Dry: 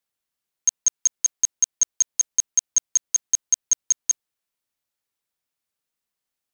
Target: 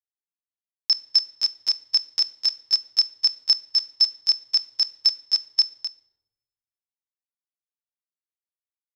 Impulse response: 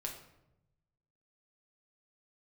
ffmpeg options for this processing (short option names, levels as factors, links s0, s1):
-filter_complex "[0:a]acrossover=split=9100[s0][s1];[s1]acompressor=threshold=0.01:ratio=4:attack=1:release=60[s2];[s0][s2]amix=inputs=2:normalize=0,atempo=0.73,equalizer=f=240:w=6.9:g=-6.5,acrusher=bits=10:mix=0:aa=0.000001,acompressor=threshold=0.112:ratio=4,lowshelf=f=160:g=-6,aecho=1:1:250:0.316,asplit=2[s3][s4];[1:a]atrim=start_sample=2205,asetrate=40131,aresample=44100[s5];[s4][s5]afir=irnorm=-1:irlink=0,volume=0.447[s6];[s3][s6]amix=inputs=2:normalize=0,asetrate=36028,aresample=44100,atempo=1.22405"